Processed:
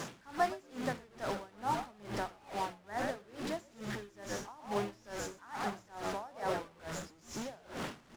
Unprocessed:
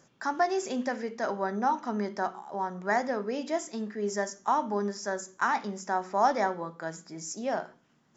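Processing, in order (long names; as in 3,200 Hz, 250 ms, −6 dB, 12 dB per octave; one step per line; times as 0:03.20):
linear delta modulator 64 kbit/s, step −27.5 dBFS
low-pass filter 3,500 Hz 6 dB per octave
low-shelf EQ 64 Hz −11 dB
bit reduction 9 bits
echo with shifted repeats 119 ms, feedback 51%, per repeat −89 Hz, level −7 dB
tremolo with a sine in dB 2.3 Hz, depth 25 dB
level −4 dB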